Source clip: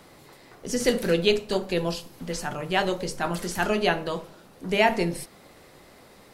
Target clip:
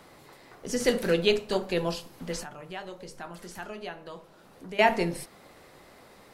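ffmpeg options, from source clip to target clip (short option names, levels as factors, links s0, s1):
-filter_complex "[0:a]equalizer=f=1100:t=o:w=2.5:g=3.5,asettb=1/sr,asplit=3[s0][s1][s2];[s0]atrim=end=2.434[s3];[s1]atrim=start=2.43:end=4.79,asetpts=PTS-STARTPTS,afade=t=in:d=0.004:c=qsin,afade=t=out:st=2.356:d=0.004:c=qsin,acompressor=threshold=0.00631:ratio=2[s4];[s2]atrim=start=4.786[s5];[s3][s4]acrossfade=d=0.004:c1=hsin:c2=qsin[s6];[s6][s5]acrossfade=d=0.004:c1=qsin:c2=hsin,volume=0.668"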